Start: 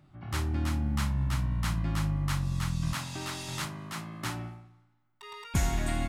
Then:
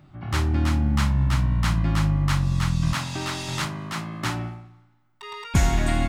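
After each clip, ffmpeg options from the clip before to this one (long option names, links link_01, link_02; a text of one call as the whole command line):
ffmpeg -i in.wav -af "equalizer=frequency=12000:width=0.77:gain=-7.5,volume=8dB" out.wav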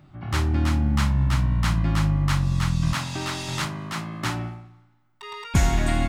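ffmpeg -i in.wav -af anull out.wav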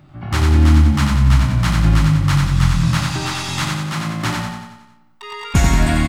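ffmpeg -i in.wav -af "aecho=1:1:91|182|273|364|455|546|637:0.708|0.375|0.199|0.105|0.0559|0.0296|0.0157,volume=5dB" out.wav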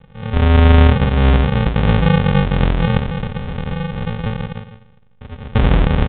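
ffmpeg -i in.wav -filter_complex "[0:a]aresample=11025,acrusher=samples=33:mix=1:aa=0.000001,aresample=44100,asplit=2[link_01][link_02];[link_02]adelay=27,volume=-11dB[link_03];[link_01][link_03]amix=inputs=2:normalize=0,aresample=8000,aresample=44100" out.wav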